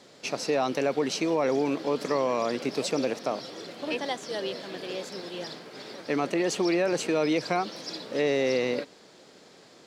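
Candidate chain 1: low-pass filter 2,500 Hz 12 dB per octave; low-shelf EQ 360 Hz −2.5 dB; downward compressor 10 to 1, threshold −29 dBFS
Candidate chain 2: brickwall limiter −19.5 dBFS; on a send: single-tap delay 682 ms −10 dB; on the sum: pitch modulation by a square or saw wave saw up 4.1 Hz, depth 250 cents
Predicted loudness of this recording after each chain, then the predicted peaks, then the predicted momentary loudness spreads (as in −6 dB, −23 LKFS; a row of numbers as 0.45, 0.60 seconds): −35.5, −30.5 LKFS; −18.5, −17.0 dBFS; 8, 10 LU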